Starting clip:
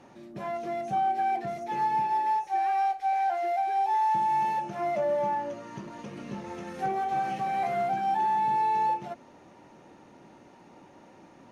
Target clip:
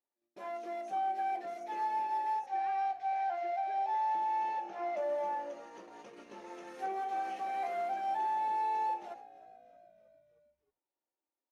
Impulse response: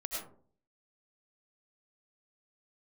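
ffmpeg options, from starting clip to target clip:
-filter_complex "[0:a]highpass=f=310:w=0.5412,highpass=f=310:w=1.3066,agate=range=-36dB:threshold=-44dB:ratio=16:detection=peak,asettb=1/sr,asplit=3[a][b][c];[a]atrim=end=2.464[d];[b]atrim=start=2.46:end=4.97,asetpts=PTS-STARTPTS,afade=t=in:d=0.004:c=qsin,afade=t=out:st=2.506:d=0.004:c=qsin,lowpass=5.2k[e];[c]atrim=start=4.966[f];[d][e]acrossfade=d=0.004:c1=hsin:c2=qsin[g];[g][f]acrossfade=d=0.004:c1=qsin:c2=hsin,asplit=6[h][i][j][k][l][m];[i]adelay=313,afreqshift=-56,volume=-21dB[n];[j]adelay=626,afreqshift=-112,volume=-25dB[o];[k]adelay=939,afreqshift=-168,volume=-29dB[p];[l]adelay=1252,afreqshift=-224,volume=-33dB[q];[m]adelay=1565,afreqshift=-280,volume=-37.1dB[r];[h][n][o][p][q][r]amix=inputs=6:normalize=0,volume=-7dB"

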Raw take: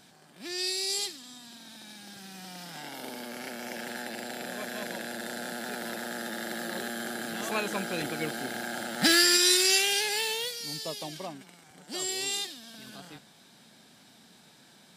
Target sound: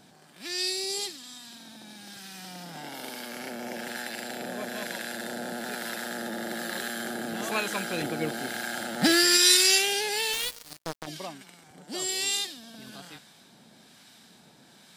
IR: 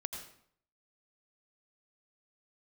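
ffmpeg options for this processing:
-filter_complex "[0:a]acrossover=split=1000[a][b];[a]aeval=exprs='val(0)*(1-0.5/2+0.5/2*cos(2*PI*1.1*n/s))':c=same[c];[b]aeval=exprs='val(0)*(1-0.5/2-0.5/2*cos(2*PI*1.1*n/s))':c=same[d];[c][d]amix=inputs=2:normalize=0,asplit=3[e][f][g];[e]afade=t=out:st=10.32:d=0.02[h];[f]acrusher=bits=4:mix=0:aa=0.5,afade=t=in:st=10.32:d=0.02,afade=t=out:st=11.06:d=0.02[i];[g]afade=t=in:st=11.06:d=0.02[j];[h][i][j]amix=inputs=3:normalize=0,volume=4dB"

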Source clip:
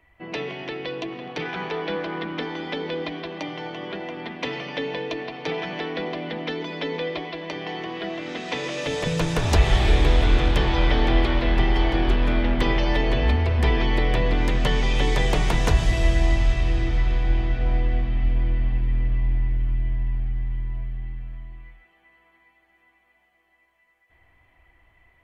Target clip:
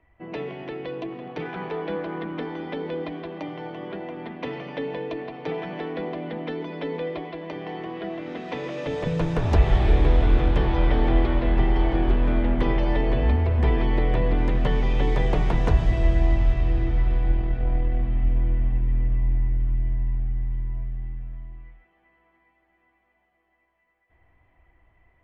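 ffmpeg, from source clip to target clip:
-filter_complex "[0:a]asettb=1/sr,asplit=3[a][b][c];[a]atrim=end=17.324[d];[b]atrim=start=17.32:end=18,asetpts=PTS-STARTPTS,afade=t=in:d=0.004:c=qsin,afade=t=out:st=0.676:d=0.004:c=qsin,aeval=exprs='if(lt(val(0),0),0.708*val(0),val(0))':c=same[e];[c]atrim=start=17.996[f];[d][e]acrossfade=d=0.004:c1=hsin:c2=qsin[g];[g][f]acrossfade=d=0.004:c1=qsin:c2=hsin,lowpass=f=1k:p=1"

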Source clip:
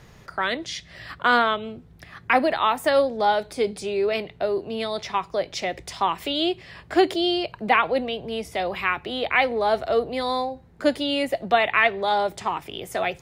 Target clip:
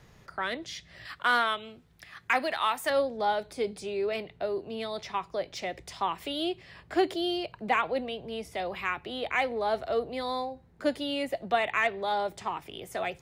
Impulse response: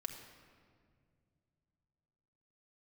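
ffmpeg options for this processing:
-filter_complex "[0:a]asettb=1/sr,asplit=3[a][b][c];[a]atrim=end=1.054[d];[b]atrim=start=1.05:end=2.9,asetpts=PTS-STARTPTS,afade=t=in:d=0.004:c=qsin,afade=t=out:st=1.846:d=0.004:c=qsin,tiltshelf=f=970:g=-6.5[e];[c]atrim=start=2.896[f];[d][e]acrossfade=d=0.004:c1=hsin:c2=qsin[g];[g][f]acrossfade=d=0.004:c1=qsin:c2=hsin,acrossover=split=690|2300[h][i][j];[j]asoftclip=type=tanh:threshold=-24dB[k];[h][i][k]amix=inputs=3:normalize=0,volume=-7dB"

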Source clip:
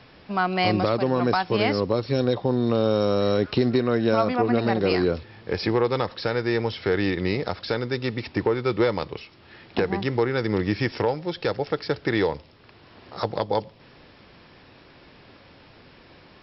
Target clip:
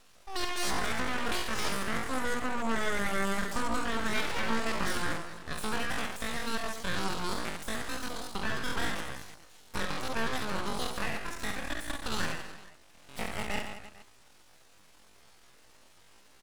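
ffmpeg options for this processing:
-af "aecho=1:1:60|132|218.4|322.1|446.5:0.631|0.398|0.251|0.158|0.1,asetrate=85689,aresample=44100,atempo=0.514651,aeval=exprs='abs(val(0))':c=same,volume=-8.5dB"

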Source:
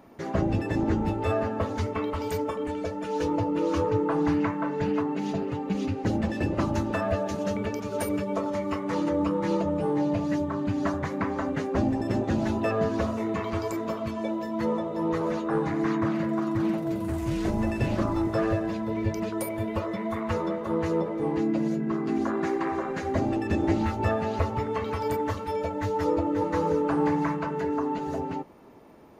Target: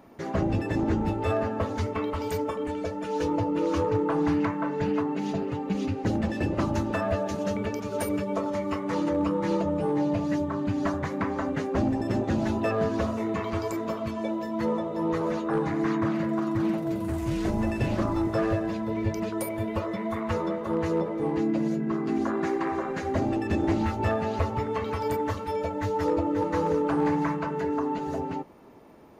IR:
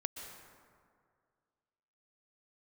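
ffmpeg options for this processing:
-af "asoftclip=type=hard:threshold=-18dB"

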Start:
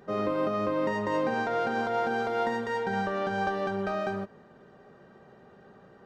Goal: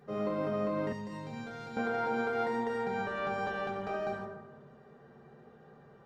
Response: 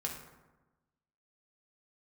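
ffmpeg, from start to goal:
-filter_complex "[1:a]atrim=start_sample=2205,asetrate=41895,aresample=44100[a];[0:a][a]afir=irnorm=-1:irlink=0,asettb=1/sr,asplit=3[b][c][d];[b]atrim=end=0.924[e];[c]atrim=start=0.92:end=1.77,asetpts=PTS-STARTPTS,afade=t=in:d=0.004:c=qsin,afade=t=out:st=0.846:d=0.004:c=qsin,acrossover=split=180|3000[f][g][h];[g]acompressor=threshold=-39dB:ratio=6[i];[f][i][h]amix=inputs=3:normalize=0[j];[d]atrim=start=1.766[k];[e][j]acrossfade=d=0.004:c1=hsin:c2=qsin[l];[l][k]acrossfade=d=0.004:c1=qsin:c2=hsin,volume=-5.5dB"

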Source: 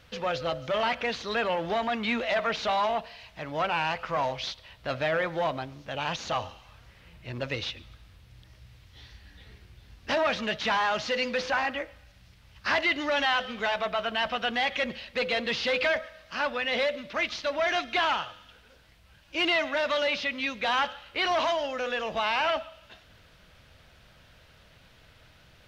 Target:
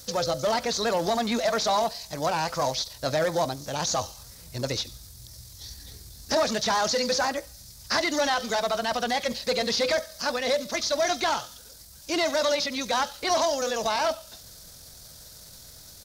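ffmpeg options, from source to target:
-filter_complex "[0:a]acrossover=split=3200[a][b];[b]acompressor=threshold=-44dB:ratio=4:attack=1:release=60[c];[a][c]amix=inputs=2:normalize=0,atempo=1.6,acrossover=split=1000[d][e];[d]acontrast=66[f];[f][e]amix=inputs=2:normalize=0,aexciter=amount=10.5:drive=9.1:freq=4.4k,volume=-2dB"

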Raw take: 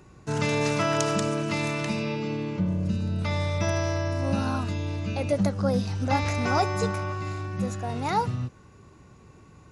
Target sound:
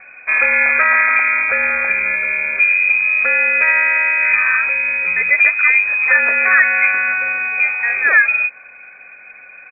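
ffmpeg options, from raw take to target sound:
-filter_complex "[0:a]highpass=f=150:p=1,equalizer=f=270:w=2.1:g=-7.5,aecho=1:1:1:0.37,acrossover=split=1700[a][b];[b]acompressor=threshold=-47dB:ratio=6[c];[a][c]amix=inputs=2:normalize=0,lowpass=f=2.2k:t=q:w=0.5098,lowpass=f=2.2k:t=q:w=0.6013,lowpass=f=2.2k:t=q:w=0.9,lowpass=f=2.2k:t=q:w=2.563,afreqshift=-2600,alimiter=level_in=16dB:limit=-1dB:release=50:level=0:latency=1,volume=-1dB"

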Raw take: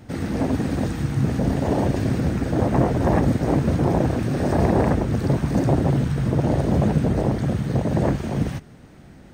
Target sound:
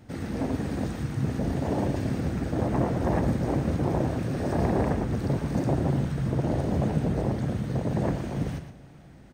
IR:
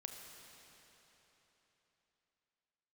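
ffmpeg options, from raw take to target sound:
-filter_complex "[0:a]asplit=2[a][b];[b]adelay=116.6,volume=-9dB,highshelf=f=4k:g=-2.62[c];[a][c]amix=inputs=2:normalize=0,asplit=2[d][e];[1:a]atrim=start_sample=2205,asetrate=52920,aresample=44100[f];[e][f]afir=irnorm=-1:irlink=0,volume=-5.5dB[g];[d][g]amix=inputs=2:normalize=0,volume=-8.5dB"

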